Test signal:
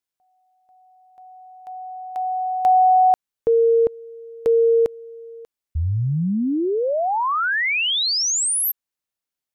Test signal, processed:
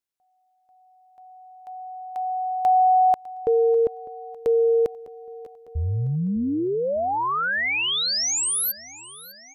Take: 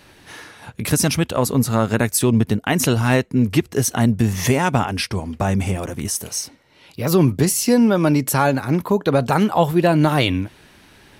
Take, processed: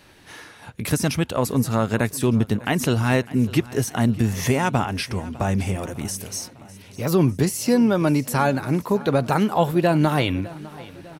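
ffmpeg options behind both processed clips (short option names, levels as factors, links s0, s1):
-filter_complex "[0:a]acrossover=split=2500[s0][s1];[s1]alimiter=limit=0.15:level=0:latency=1:release=59[s2];[s0][s2]amix=inputs=2:normalize=0,aecho=1:1:603|1206|1809|2412|3015:0.106|0.0604|0.0344|0.0196|0.0112,volume=0.708"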